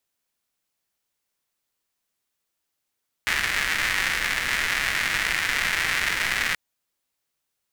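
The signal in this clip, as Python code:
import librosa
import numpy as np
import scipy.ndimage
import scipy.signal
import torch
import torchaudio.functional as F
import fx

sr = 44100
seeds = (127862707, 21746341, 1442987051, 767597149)

y = fx.rain(sr, seeds[0], length_s=3.28, drops_per_s=290.0, hz=1900.0, bed_db=-13.0)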